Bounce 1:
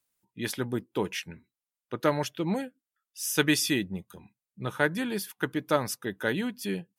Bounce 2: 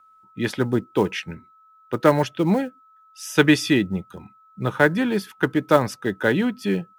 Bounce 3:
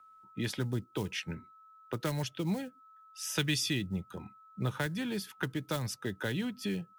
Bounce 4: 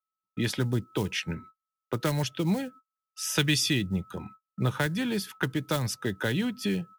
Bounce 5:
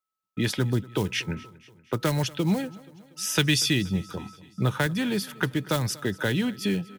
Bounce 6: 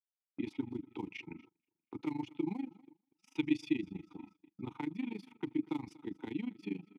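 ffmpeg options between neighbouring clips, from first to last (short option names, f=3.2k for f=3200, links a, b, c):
-filter_complex "[0:a]aemphasis=mode=reproduction:type=75fm,aeval=exprs='val(0)+0.001*sin(2*PI*1300*n/s)':c=same,acrossover=split=410|1000|3300[a][b][c][d];[b]acrusher=bits=5:mode=log:mix=0:aa=0.000001[e];[a][e][c][d]amix=inputs=4:normalize=0,volume=8.5dB"
-filter_complex "[0:a]acrossover=split=140|3000[a][b][c];[b]acompressor=threshold=-31dB:ratio=10[d];[a][d][c]amix=inputs=3:normalize=0,volume=-3.5dB"
-af "agate=range=-41dB:threshold=-52dB:ratio=16:detection=peak,volume=6dB"
-af "aecho=1:1:238|476|714|952:0.0841|0.0471|0.0264|0.0148,volume=2.5dB"
-filter_complex "[0:a]asplit=3[a][b][c];[a]bandpass=f=300:t=q:w=8,volume=0dB[d];[b]bandpass=f=870:t=q:w=8,volume=-6dB[e];[c]bandpass=f=2.24k:t=q:w=8,volume=-9dB[f];[d][e][f]amix=inputs=3:normalize=0,tremolo=f=25:d=0.919,agate=range=-21dB:threshold=-59dB:ratio=16:detection=peak,volume=2dB"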